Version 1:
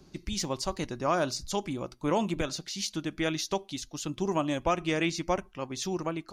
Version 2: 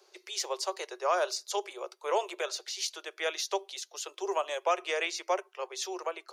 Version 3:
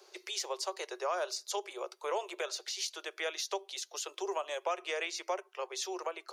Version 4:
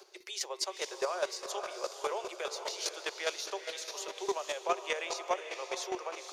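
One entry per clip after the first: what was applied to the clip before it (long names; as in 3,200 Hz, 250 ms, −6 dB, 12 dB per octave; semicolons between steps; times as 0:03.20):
Butterworth high-pass 380 Hz 96 dB per octave
downward compressor 2 to 1, threshold −42 dBFS, peak gain reduction 10.5 dB; level +3.5 dB
feedback delay with all-pass diffusion 484 ms, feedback 46%, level −6.5 dB; square-wave tremolo 4.9 Hz, depth 60%, duty 15%; level +5 dB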